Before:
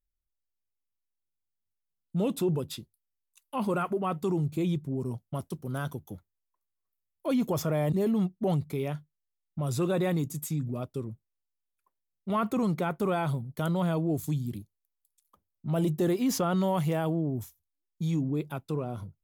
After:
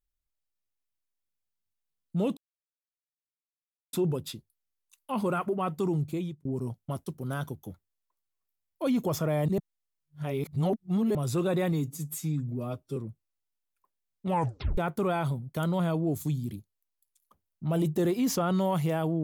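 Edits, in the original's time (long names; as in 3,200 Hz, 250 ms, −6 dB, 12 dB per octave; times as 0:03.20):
0:02.37: splice in silence 1.56 s
0:04.49–0:04.89: fade out
0:08.02–0:09.59: reverse
0:10.16–0:10.99: time-stretch 1.5×
0:12.29: tape stop 0.51 s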